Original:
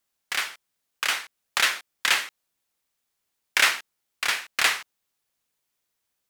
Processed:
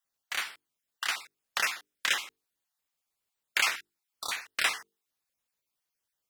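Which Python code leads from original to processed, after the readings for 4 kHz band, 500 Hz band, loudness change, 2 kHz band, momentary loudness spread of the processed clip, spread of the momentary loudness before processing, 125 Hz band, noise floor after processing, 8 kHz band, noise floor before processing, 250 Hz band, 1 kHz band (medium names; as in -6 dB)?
-7.0 dB, -7.0 dB, -6.5 dB, -6.5 dB, 12 LU, 11 LU, no reading, under -85 dBFS, -6.5 dB, -79 dBFS, -7.0 dB, -6.5 dB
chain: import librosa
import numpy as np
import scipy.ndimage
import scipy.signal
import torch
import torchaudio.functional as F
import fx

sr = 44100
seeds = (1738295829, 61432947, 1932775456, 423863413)

y = fx.spec_dropout(x, sr, seeds[0], share_pct=21)
y = fx.hum_notches(y, sr, base_hz=50, count=9)
y = F.gain(torch.from_numpy(y), -5.5).numpy()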